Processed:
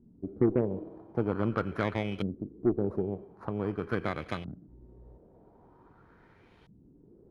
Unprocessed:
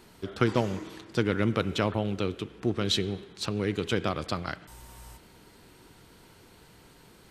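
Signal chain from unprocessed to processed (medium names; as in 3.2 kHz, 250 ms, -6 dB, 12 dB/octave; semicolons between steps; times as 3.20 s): bit-reversed sample order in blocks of 16 samples; LFO low-pass saw up 0.45 Hz 210–3000 Hz; Chebyshev shaper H 6 -25 dB, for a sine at -9.5 dBFS; trim -4 dB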